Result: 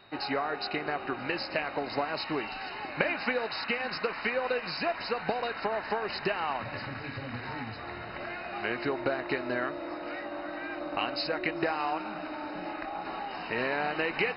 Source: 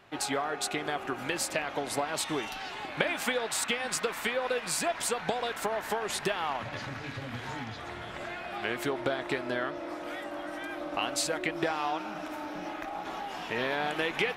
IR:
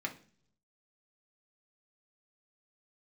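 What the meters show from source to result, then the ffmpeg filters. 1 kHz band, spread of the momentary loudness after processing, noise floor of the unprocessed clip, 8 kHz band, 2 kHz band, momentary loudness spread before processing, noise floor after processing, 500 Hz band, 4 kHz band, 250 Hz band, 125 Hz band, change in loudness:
+0.5 dB, 8 LU, −41 dBFS, below −40 dB, +1.0 dB, 9 LU, −40 dBFS, +0.5 dB, −2.0 dB, +0.5 dB, −0.5 dB, 0.0 dB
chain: -filter_complex "[0:a]aeval=exprs='val(0)+0.002*sin(2*PI*3700*n/s)':channel_layout=same,asplit=2[link_01][link_02];[1:a]atrim=start_sample=2205,asetrate=41013,aresample=44100[link_03];[link_02][link_03]afir=irnorm=-1:irlink=0,volume=-21.5dB[link_04];[link_01][link_04]amix=inputs=2:normalize=0" -ar 48000 -c:a mp2 -b:a 32k

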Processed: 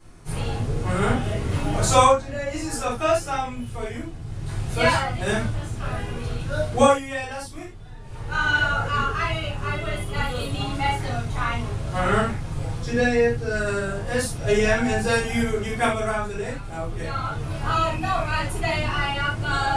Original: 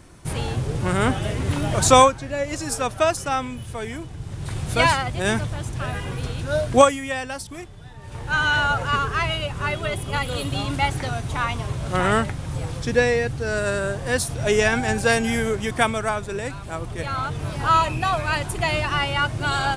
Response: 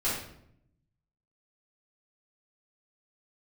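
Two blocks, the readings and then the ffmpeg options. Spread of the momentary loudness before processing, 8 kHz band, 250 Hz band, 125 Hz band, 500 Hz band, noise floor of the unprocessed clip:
12 LU, −4.0 dB, −0.5 dB, −0.5 dB, −1.5 dB, −37 dBFS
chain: -filter_complex "[1:a]atrim=start_sample=2205,atrim=end_sample=4410[link_01];[0:a][link_01]afir=irnorm=-1:irlink=0,volume=-10dB"

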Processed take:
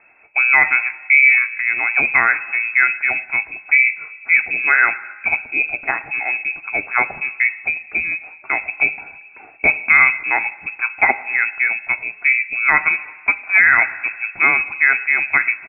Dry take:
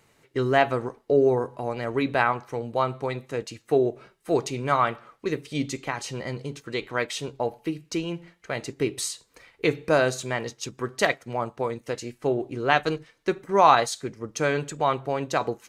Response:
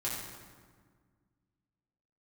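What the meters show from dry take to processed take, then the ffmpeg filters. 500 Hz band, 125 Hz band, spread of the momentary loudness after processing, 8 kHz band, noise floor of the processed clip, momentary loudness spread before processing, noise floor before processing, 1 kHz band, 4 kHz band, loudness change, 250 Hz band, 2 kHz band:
−11.0 dB, below −10 dB, 11 LU, below −40 dB, −42 dBFS, 12 LU, −64 dBFS, +1.0 dB, below −35 dB, +11.0 dB, −10.0 dB, +19.0 dB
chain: -filter_complex "[0:a]equalizer=frequency=66:width=1:gain=8,aecho=1:1:1.6:0.3,asplit=2[link_01][link_02];[1:a]atrim=start_sample=2205,adelay=20[link_03];[link_02][link_03]afir=irnorm=-1:irlink=0,volume=-20.5dB[link_04];[link_01][link_04]amix=inputs=2:normalize=0,lowpass=frequency=2300:width_type=q:width=0.5098,lowpass=frequency=2300:width_type=q:width=0.6013,lowpass=frequency=2300:width_type=q:width=0.9,lowpass=frequency=2300:width_type=q:width=2.563,afreqshift=-2700,alimiter=level_in=10dB:limit=-1dB:release=50:level=0:latency=1,volume=-1dB"

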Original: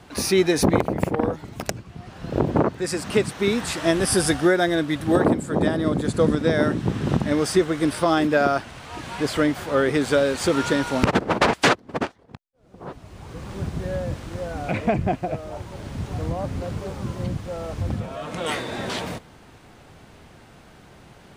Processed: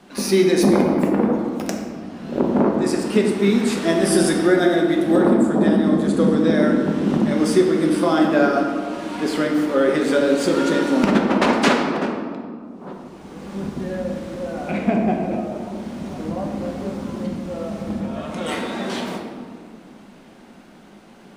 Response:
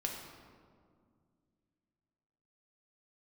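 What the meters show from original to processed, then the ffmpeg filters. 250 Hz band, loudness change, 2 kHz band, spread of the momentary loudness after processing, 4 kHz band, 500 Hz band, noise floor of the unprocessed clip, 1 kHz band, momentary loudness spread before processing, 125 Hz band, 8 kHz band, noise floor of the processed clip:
+6.0 dB, +3.5 dB, 0.0 dB, 14 LU, 0.0 dB, +3.0 dB, −50 dBFS, +1.0 dB, 14 LU, −1.0 dB, −1.0 dB, −45 dBFS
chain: -filter_complex "[0:a]lowshelf=frequency=160:width_type=q:width=3:gain=-8.5[link_01];[1:a]atrim=start_sample=2205[link_02];[link_01][link_02]afir=irnorm=-1:irlink=0,volume=-1dB"

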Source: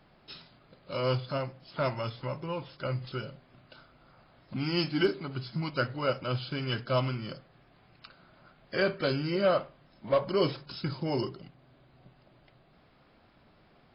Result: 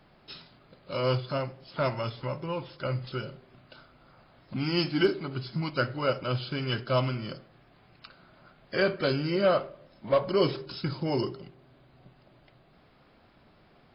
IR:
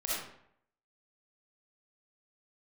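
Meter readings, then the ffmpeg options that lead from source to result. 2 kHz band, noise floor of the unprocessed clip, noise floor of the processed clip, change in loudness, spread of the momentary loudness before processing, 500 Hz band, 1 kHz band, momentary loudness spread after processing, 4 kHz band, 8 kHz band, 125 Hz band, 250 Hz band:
+2.0 dB, −62 dBFS, −60 dBFS, +2.0 dB, 15 LU, +2.0 dB, +2.0 dB, 15 LU, +1.5 dB, can't be measured, +2.0 dB, +2.0 dB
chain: -filter_complex "[0:a]asplit=2[link_01][link_02];[link_02]equalizer=frequency=390:width=1.5:gain=13[link_03];[1:a]atrim=start_sample=2205[link_04];[link_03][link_04]afir=irnorm=-1:irlink=0,volume=-28.5dB[link_05];[link_01][link_05]amix=inputs=2:normalize=0,volume=1.5dB"

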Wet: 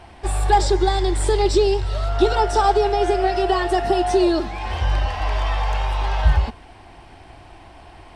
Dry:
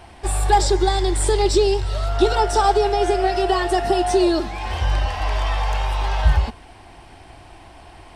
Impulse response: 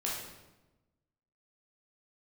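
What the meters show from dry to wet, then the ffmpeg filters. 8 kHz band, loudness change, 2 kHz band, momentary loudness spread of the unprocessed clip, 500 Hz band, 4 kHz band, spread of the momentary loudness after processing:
−4.5 dB, 0.0 dB, −0.5 dB, 7 LU, 0.0 dB, −2.0 dB, 7 LU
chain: -af "highshelf=frequency=7100:gain=-8.5"

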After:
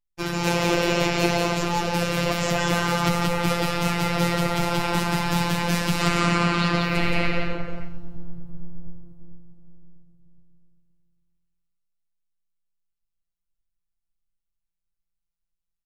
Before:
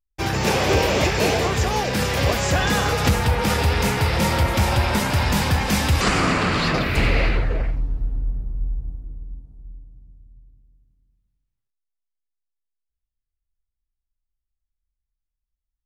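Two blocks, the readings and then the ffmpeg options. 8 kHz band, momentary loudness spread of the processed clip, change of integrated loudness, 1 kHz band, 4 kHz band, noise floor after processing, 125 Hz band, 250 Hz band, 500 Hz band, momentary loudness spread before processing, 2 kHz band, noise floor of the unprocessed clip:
−4.0 dB, 16 LU, −2.5 dB, −2.0 dB, −2.5 dB, −82 dBFS, −4.5 dB, 0.0 dB, −2.5 dB, 11 LU, −2.5 dB, −83 dBFS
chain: -filter_complex "[0:a]bandreject=frequency=1700:width=22,asplit=2[link_01][link_02];[link_02]aecho=0:1:175:0.668[link_03];[link_01][link_03]amix=inputs=2:normalize=0,afftfilt=real='hypot(re,im)*cos(PI*b)':imag='0':win_size=1024:overlap=0.75,asplit=2[link_04][link_05];[link_05]aecho=0:1:127|254:0.158|0.0349[link_06];[link_04][link_06]amix=inputs=2:normalize=0,adynamicequalizer=threshold=0.00891:dfrequency=4900:dqfactor=0.7:tfrequency=4900:tqfactor=0.7:attack=5:release=100:ratio=0.375:range=1.5:mode=cutabove:tftype=highshelf"

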